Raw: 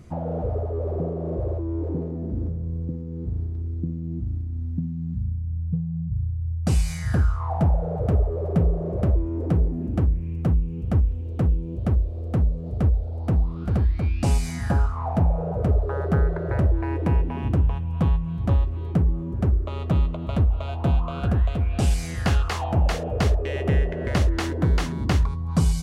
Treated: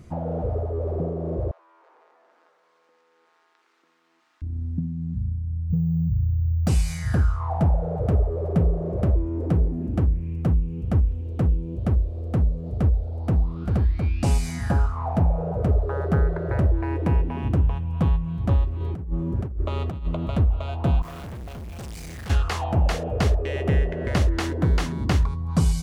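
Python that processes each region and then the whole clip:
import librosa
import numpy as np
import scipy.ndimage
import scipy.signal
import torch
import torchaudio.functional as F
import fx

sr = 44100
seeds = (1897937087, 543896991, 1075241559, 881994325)

y = fx.chain(x, sr, fx.highpass(hz=1100.0, slope=24),
    fx.high_shelf(hz=5800.0, db=-10.5),
    fx.env_flatten(amount_pct=50), at=(1.51, 4.42))
y = fx.chain(y, sr, fx.resample_bad(factor=2, down='none', up='hold'),
    fx.env_flatten(amount_pct=70), at=(5.7, 6.68))
y = fx.chain(y, sr, fx.highpass(hz=41.0, slope=12),
    fx.over_compress(threshold_db=-24.0, ratio=-0.5), at=(18.8, 20.29))
y = fx.chain(y, sr, fx.hum_notches(base_hz=50, count=2),
    fx.tube_stage(drive_db=34.0, bias=0.3),
    fx.quant_dither(seeds[0], bits=8, dither='none'), at=(21.02, 22.3))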